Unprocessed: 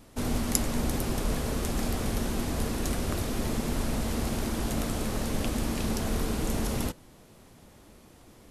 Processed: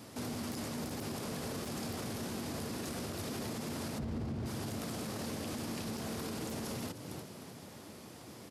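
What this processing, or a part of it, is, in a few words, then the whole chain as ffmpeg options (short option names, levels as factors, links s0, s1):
broadcast voice chain: -filter_complex "[0:a]asplit=3[s0][s1][s2];[s0]afade=t=out:st=3.98:d=0.02[s3];[s1]aemphasis=mode=reproduction:type=riaa,afade=t=in:st=3.98:d=0.02,afade=t=out:st=4.45:d=0.02[s4];[s2]afade=t=in:st=4.45:d=0.02[s5];[s3][s4][s5]amix=inputs=3:normalize=0,asplit=4[s6][s7][s8][s9];[s7]adelay=307,afreqshift=71,volume=0.112[s10];[s8]adelay=614,afreqshift=142,volume=0.0359[s11];[s9]adelay=921,afreqshift=213,volume=0.0115[s12];[s6][s10][s11][s12]amix=inputs=4:normalize=0,highpass=f=95:w=0.5412,highpass=f=95:w=1.3066,deesser=0.5,acompressor=threshold=0.01:ratio=3,equalizer=f=4900:t=o:w=0.38:g=4.5,alimiter=level_in=3.55:limit=0.0631:level=0:latency=1:release=25,volume=0.282,volume=1.58"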